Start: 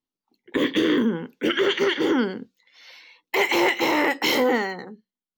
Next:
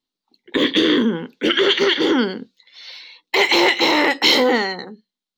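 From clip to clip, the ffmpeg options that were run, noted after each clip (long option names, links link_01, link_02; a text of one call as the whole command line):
ffmpeg -i in.wav -af "equalizer=frequency=100:width_type=o:width=0.67:gain=-7,equalizer=frequency=4000:width_type=o:width=0.67:gain=11,equalizer=frequency=16000:width_type=o:width=0.67:gain=-10,volume=4dB" out.wav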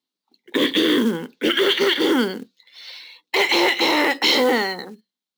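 ffmpeg -i in.wav -filter_complex "[0:a]highpass=150,asplit=2[link_01][link_02];[link_02]alimiter=limit=-9dB:level=0:latency=1:release=19,volume=1dB[link_03];[link_01][link_03]amix=inputs=2:normalize=0,acrusher=bits=5:mode=log:mix=0:aa=0.000001,volume=-7.5dB" out.wav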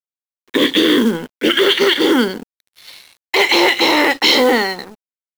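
ffmpeg -i in.wav -af "aeval=exprs='sgn(val(0))*max(abs(val(0))-0.00944,0)':channel_layout=same,volume=5.5dB" out.wav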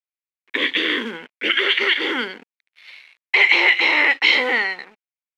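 ffmpeg -i in.wav -af "lowpass=frequency=2300:width_type=q:width=3.2,aemphasis=mode=production:type=riaa,volume=-9.5dB" out.wav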